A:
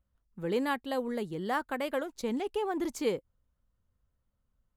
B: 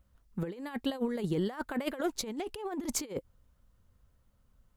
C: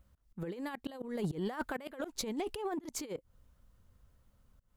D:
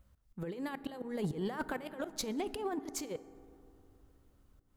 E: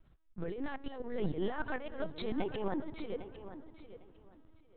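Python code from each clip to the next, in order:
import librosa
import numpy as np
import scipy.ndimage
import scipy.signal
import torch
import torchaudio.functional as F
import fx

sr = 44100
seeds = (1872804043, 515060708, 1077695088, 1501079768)

y1 = fx.over_compress(x, sr, threshold_db=-37.0, ratio=-0.5)
y1 = y1 * librosa.db_to_amplitude(4.0)
y2 = fx.auto_swell(y1, sr, attack_ms=200.0)
y2 = 10.0 ** (-27.0 / 20.0) * np.tanh(y2 / 10.0 ** (-27.0 / 20.0))
y2 = y2 * librosa.db_to_amplitude(1.5)
y3 = fx.rev_fdn(y2, sr, rt60_s=2.8, lf_ratio=1.2, hf_ratio=0.3, size_ms=22.0, drr_db=14.0)
y4 = fx.lpc_vocoder(y3, sr, seeds[0], excitation='pitch_kept', order=10)
y4 = fx.echo_feedback(y4, sr, ms=803, feedback_pct=20, wet_db=-13.0)
y4 = y4 * librosa.db_to_amplitude(2.0)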